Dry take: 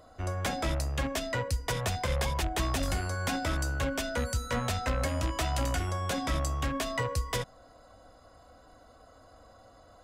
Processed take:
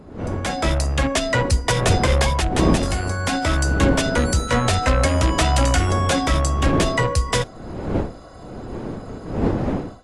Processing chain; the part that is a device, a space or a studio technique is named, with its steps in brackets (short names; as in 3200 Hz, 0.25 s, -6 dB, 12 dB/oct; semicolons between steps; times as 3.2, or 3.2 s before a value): smartphone video outdoors (wind noise 340 Hz -36 dBFS; AGC gain up to 14.5 dB; gain -1.5 dB; AAC 64 kbps 24000 Hz)